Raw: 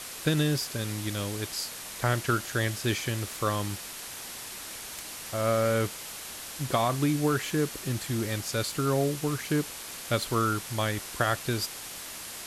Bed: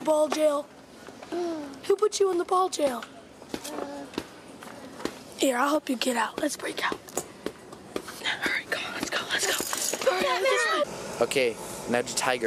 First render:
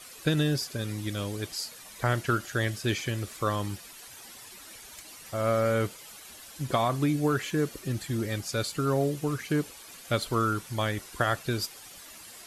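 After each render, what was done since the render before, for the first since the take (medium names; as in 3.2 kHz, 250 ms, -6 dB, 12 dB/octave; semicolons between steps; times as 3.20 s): noise reduction 11 dB, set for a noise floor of -41 dBFS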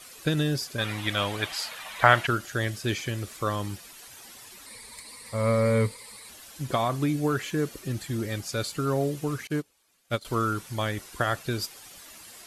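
0.78–2.27 s: high-order bell 1.5 kHz +12.5 dB 2.9 oct; 4.66–6.29 s: rippled EQ curve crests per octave 0.95, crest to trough 12 dB; 9.47–10.25 s: upward expansion 2.5:1, over -37 dBFS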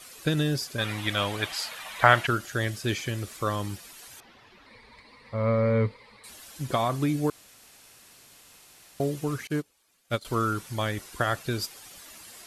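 4.20–6.24 s: distance through air 300 m; 7.30–9.00 s: room tone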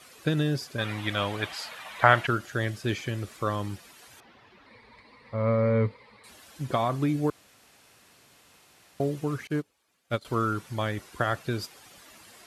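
high-pass 59 Hz; treble shelf 4.1 kHz -9 dB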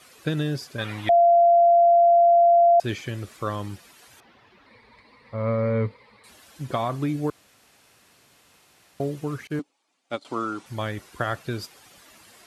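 1.09–2.80 s: bleep 688 Hz -12.5 dBFS; 9.59–10.66 s: cabinet simulation 260–9000 Hz, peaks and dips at 280 Hz +7 dB, 450 Hz -4 dB, 810 Hz +6 dB, 1.6 kHz -5 dB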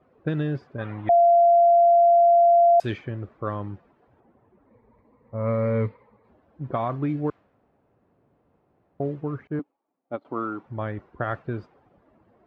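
level-controlled noise filter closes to 600 Hz, open at -14 dBFS; treble shelf 4.4 kHz -7 dB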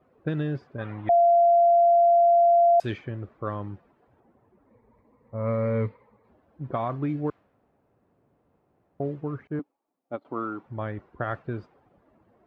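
trim -2 dB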